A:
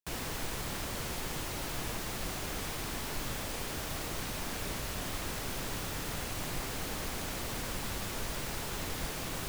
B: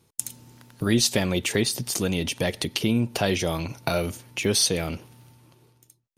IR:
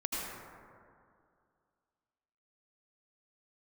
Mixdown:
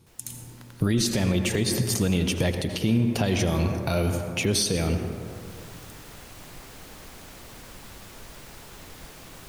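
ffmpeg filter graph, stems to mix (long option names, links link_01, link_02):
-filter_complex "[0:a]volume=-7dB,afade=type=in:start_time=4.84:duration=0.78:silence=0.223872[link_01];[1:a]lowshelf=frequency=200:gain=9,volume=-1dB,asplit=2[link_02][link_03];[link_03]volume=-9.5dB[link_04];[2:a]atrim=start_sample=2205[link_05];[link_04][link_05]afir=irnorm=-1:irlink=0[link_06];[link_01][link_02][link_06]amix=inputs=3:normalize=0,alimiter=limit=-13dB:level=0:latency=1:release=135"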